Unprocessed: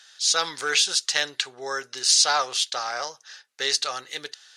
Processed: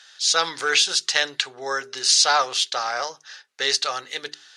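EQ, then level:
low-shelf EQ 63 Hz −6.5 dB
high-shelf EQ 8,700 Hz −11 dB
mains-hum notches 50/100/150/200/250/300/350/400 Hz
+4.0 dB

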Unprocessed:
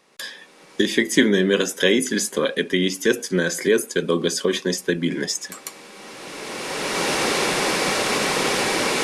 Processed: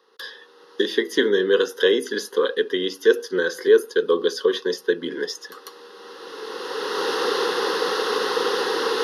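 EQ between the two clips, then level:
high-pass with resonance 470 Hz, resonance Q 5.6
high-shelf EQ 5,700 Hz −5.5 dB
phaser with its sweep stopped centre 2,300 Hz, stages 6
0.0 dB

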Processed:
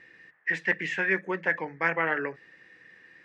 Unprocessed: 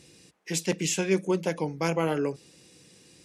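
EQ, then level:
low-pass with resonance 1,800 Hz, resonance Q 14
low-shelf EQ 440 Hz −11.5 dB
mains-hum notches 50/100/150 Hz
0.0 dB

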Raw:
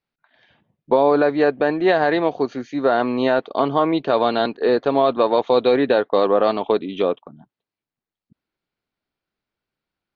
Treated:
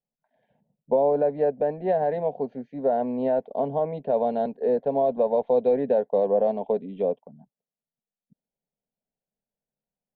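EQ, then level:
low-pass filter 1,000 Hz 12 dB per octave
phaser with its sweep stopped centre 330 Hz, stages 6
−3.0 dB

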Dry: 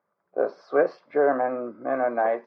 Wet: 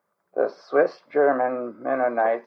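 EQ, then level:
high-shelf EQ 3,300 Hz +7.5 dB
+1.5 dB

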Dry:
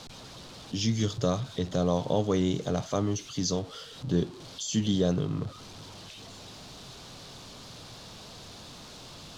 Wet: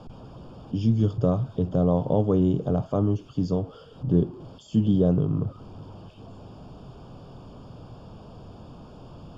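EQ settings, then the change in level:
moving average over 22 samples
low-shelf EQ 210 Hz +4.5 dB
+3.5 dB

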